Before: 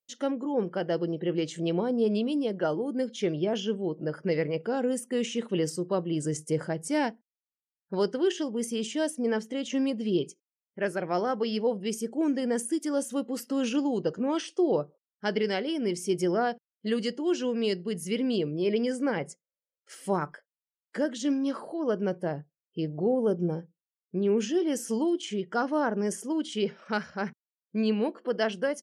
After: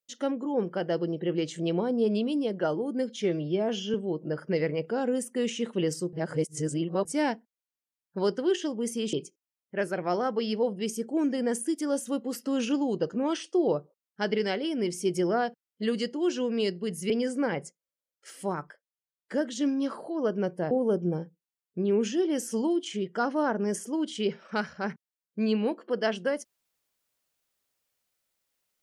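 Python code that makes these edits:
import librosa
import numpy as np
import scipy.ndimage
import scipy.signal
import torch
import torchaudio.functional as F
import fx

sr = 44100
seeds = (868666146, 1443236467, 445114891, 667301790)

y = fx.edit(x, sr, fx.stretch_span(start_s=3.22, length_s=0.48, factor=1.5),
    fx.reverse_span(start_s=5.89, length_s=0.92),
    fx.cut(start_s=8.89, length_s=1.28),
    fx.cut(start_s=18.14, length_s=0.6),
    fx.clip_gain(start_s=20.07, length_s=0.91, db=-3.5),
    fx.cut(start_s=22.35, length_s=0.73), tone=tone)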